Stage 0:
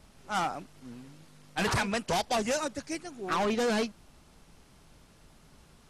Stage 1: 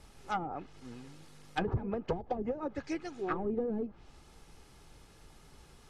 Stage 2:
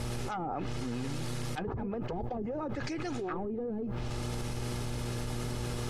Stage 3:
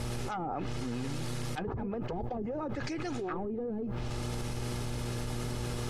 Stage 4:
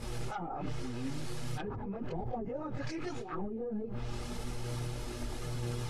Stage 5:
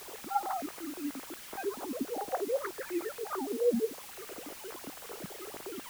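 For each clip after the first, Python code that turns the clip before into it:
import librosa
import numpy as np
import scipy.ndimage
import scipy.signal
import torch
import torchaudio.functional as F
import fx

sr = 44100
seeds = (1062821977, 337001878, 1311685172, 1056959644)

y1 = fx.env_lowpass_down(x, sr, base_hz=300.0, full_db=-25.0)
y1 = y1 + 0.35 * np.pad(y1, (int(2.4 * sr / 1000.0), 0))[:len(y1)]
y2 = fx.dmg_buzz(y1, sr, base_hz=120.0, harmonics=5, level_db=-56.0, tilt_db=-7, odd_only=False)
y2 = fx.env_flatten(y2, sr, amount_pct=100)
y2 = y2 * 10.0 ** (-8.0 / 20.0)
y3 = y2
y4 = fx.chorus_voices(y3, sr, voices=4, hz=0.55, base_ms=23, depth_ms=4.5, mix_pct=65)
y4 = y4 * 10.0 ** (-1.0 / 20.0)
y5 = fx.sine_speech(y4, sr)
y5 = fx.quant_dither(y5, sr, seeds[0], bits=8, dither='triangular')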